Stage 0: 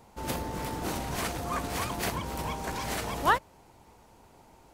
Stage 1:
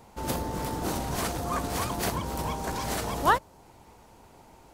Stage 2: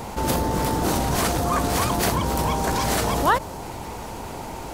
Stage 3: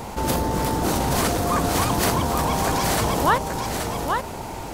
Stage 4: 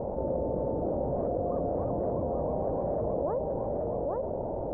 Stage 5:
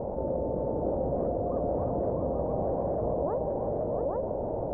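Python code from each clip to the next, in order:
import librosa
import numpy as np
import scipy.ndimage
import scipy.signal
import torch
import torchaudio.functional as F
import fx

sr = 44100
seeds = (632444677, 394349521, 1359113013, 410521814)

y1 = fx.dynamic_eq(x, sr, hz=2300.0, q=1.2, threshold_db=-49.0, ratio=4.0, max_db=-5)
y1 = F.gain(torch.from_numpy(y1), 3.0).numpy()
y2 = fx.env_flatten(y1, sr, amount_pct=50)
y2 = F.gain(torch.from_numpy(y2), 2.0).numpy()
y3 = y2 + 10.0 ** (-5.0 / 20.0) * np.pad(y2, (int(827 * sr / 1000.0), 0))[:len(y2)]
y4 = fx.ladder_lowpass(y3, sr, hz=620.0, resonance_pct=70)
y4 = fx.env_flatten(y4, sr, amount_pct=70)
y4 = F.gain(torch.from_numpy(y4), -4.0).numpy()
y5 = y4 + 10.0 ** (-7.0 / 20.0) * np.pad(y4, (int(684 * sr / 1000.0), 0))[:len(y4)]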